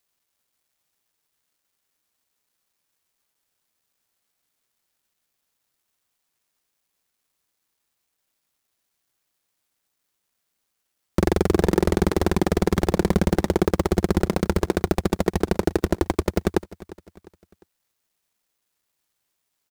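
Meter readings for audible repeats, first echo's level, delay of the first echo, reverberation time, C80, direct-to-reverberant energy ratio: 3, −19.0 dB, 352 ms, no reverb audible, no reverb audible, no reverb audible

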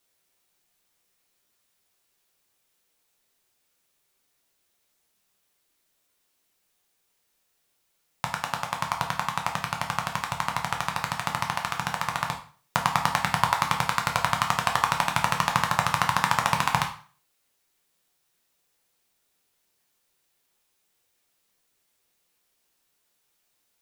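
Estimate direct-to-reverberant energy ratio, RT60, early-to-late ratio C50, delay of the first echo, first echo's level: 1.5 dB, 0.40 s, 9.5 dB, no echo audible, no echo audible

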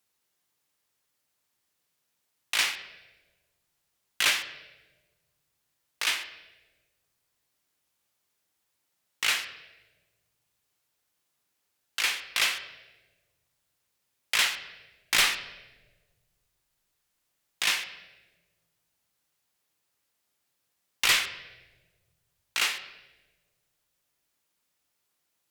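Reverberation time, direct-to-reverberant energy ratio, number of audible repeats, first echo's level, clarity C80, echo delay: 1.3 s, 7.5 dB, no echo audible, no echo audible, 13.5 dB, no echo audible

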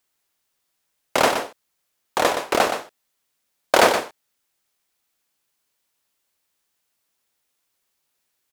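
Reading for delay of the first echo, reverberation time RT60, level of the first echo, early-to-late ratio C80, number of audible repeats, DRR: 121 ms, no reverb audible, −8.0 dB, no reverb audible, 1, no reverb audible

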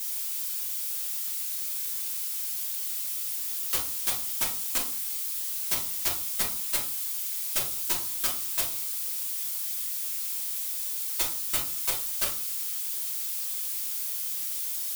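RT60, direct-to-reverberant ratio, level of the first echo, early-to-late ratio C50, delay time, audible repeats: 0.45 s, −5.0 dB, no echo audible, 8.0 dB, no echo audible, no echo audible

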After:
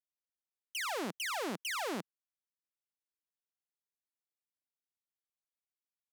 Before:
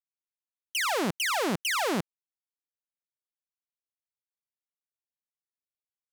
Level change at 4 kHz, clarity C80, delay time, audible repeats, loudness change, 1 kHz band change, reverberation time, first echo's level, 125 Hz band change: −9.0 dB, no reverb audible, no echo audible, no echo audible, −9.0 dB, −9.0 dB, no reverb audible, no echo audible, −14.0 dB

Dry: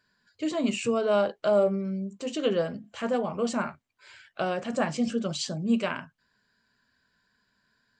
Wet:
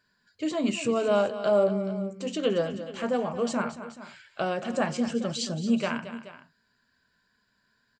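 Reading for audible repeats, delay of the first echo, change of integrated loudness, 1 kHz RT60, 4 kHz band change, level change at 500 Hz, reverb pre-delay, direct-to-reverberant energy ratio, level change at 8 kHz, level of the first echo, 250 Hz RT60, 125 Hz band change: 2, 225 ms, +0.5 dB, no reverb audible, +0.5 dB, +0.5 dB, no reverb audible, no reverb audible, +0.5 dB, −12.5 dB, no reverb audible, +0.5 dB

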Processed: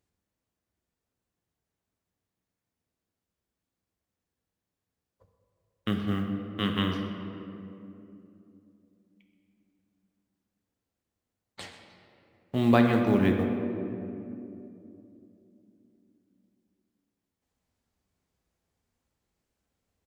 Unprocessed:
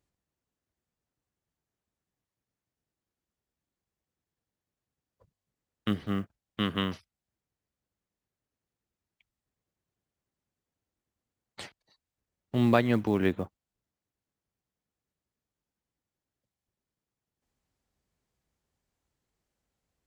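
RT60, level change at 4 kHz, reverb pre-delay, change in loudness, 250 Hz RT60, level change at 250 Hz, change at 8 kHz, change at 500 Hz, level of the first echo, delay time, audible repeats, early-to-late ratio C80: 2.9 s, +1.5 dB, 4 ms, +1.0 dB, 4.2 s, +4.0 dB, can't be measured, +2.0 dB, −15.0 dB, 127 ms, 1, 5.5 dB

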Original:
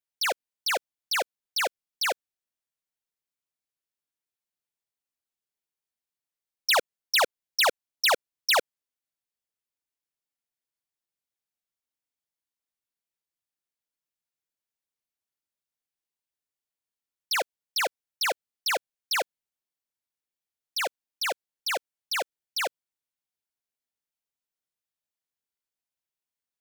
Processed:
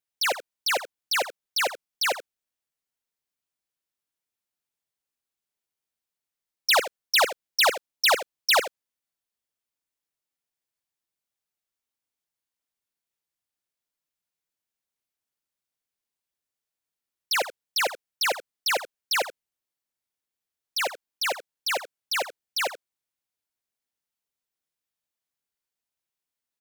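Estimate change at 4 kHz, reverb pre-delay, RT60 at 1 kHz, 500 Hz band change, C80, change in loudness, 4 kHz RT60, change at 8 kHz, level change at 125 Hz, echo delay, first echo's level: +2.0 dB, no reverb audible, no reverb audible, +2.0 dB, no reverb audible, +2.0 dB, no reverb audible, +2.0 dB, can't be measured, 81 ms, −13.5 dB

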